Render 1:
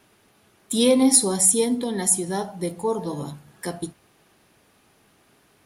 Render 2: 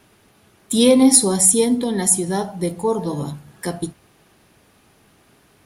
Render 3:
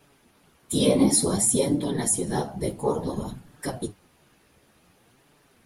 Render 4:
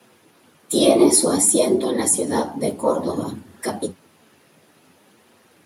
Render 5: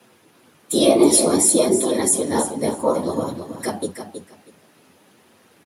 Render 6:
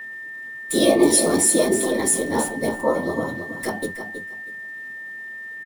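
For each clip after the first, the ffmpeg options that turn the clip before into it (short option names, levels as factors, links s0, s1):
-af "lowshelf=f=170:g=5.5,volume=1.5"
-filter_complex "[0:a]asplit=2[s0][s1];[s1]alimiter=limit=0.282:level=0:latency=1:release=27,volume=1.19[s2];[s0][s2]amix=inputs=2:normalize=0,afftfilt=real='hypot(re,im)*cos(2*PI*random(0))':imag='hypot(re,im)*sin(2*PI*random(1))':win_size=512:overlap=0.75,flanger=delay=6.8:depth=8.5:regen=41:speed=0.56:shape=sinusoidal,volume=0.794"
-af "afreqshift=83,volume=1.88"
-af "aecho=1:1:321|642|963:0.355|0.0639|0.0115"
-filter_complex "[0:a]asplit=2[s0][s1];[s1]adelay=23,volume=0.266[s2];[s0][s2]amix=inputs=2:normalize=0,aeval=exprs='val(0)+0.0316*sin(2*PI*1800*n/s)':c=same,acrossover=split=360|3800[s3][s4][s5];[s5]acrusher=bits=6:dc=4:mix=0:aa=0.000001[s6];[s3][s4][s6]amix=inputs=3:normalize=0,volume=0.794"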